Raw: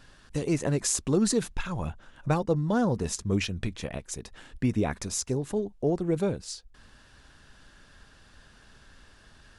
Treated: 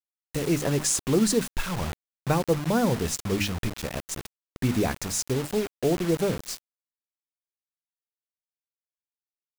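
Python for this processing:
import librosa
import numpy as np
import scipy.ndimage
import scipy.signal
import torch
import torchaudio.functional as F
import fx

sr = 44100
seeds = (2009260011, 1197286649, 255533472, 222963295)

y = fx.hum_notches(x, sr, base_hz=50, count=6)
y = fx.quant_dither(y, sr, seeds[0], bits=6, dither='none')
y = y * librosa.db_to_amplitude(2.5)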